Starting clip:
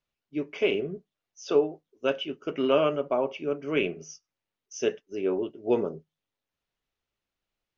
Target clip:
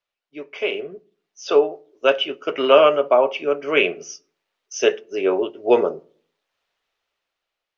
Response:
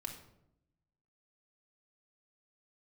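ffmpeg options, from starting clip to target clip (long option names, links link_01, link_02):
-filter_complex "[0:a]dynaudnorm=framelen=370:gausssize=7:maxgain=11.5dB,acrossover=split=410 6000:gain=0.141 1 0.251[link_01][link_02][link_03];[link_01][link_02][link_03]amix=inputs=3:normalize=0,asplit=2[link_04][link_05];[1:a]atrim=start_sample=2205,asetrate=88200,aresample=44100[link_06];[link_05][link_06]afir=irnorm=-1:irlink=0,volume=-7.5dB[link_07];[link_04][link_07]amix=inputs=2:normalize=0,volume=2.5dB"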